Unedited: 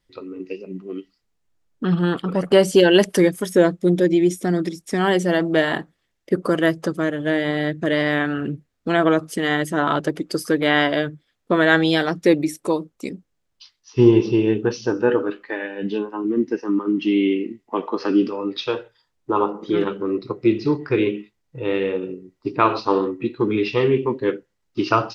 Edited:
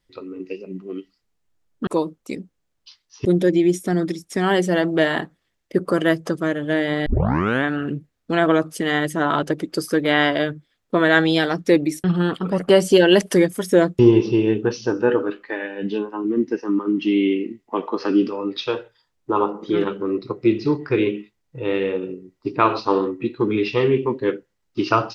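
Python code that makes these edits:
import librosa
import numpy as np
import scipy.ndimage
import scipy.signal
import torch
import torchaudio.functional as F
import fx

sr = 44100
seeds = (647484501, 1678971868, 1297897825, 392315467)

y = fx.edit(x, sr, fx.swap(start_s=1.87, length_s=1.95, other_s=12.61, other_length_s=1.38),
    fx.tape_start(start_s=7.63, length_s=0.58), tone=tone)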